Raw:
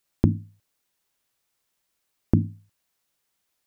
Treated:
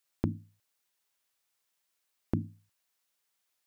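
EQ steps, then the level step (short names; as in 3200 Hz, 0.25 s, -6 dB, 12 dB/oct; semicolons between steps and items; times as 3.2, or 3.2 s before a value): low shelf 410 Hz -10 dB; -3.0 dB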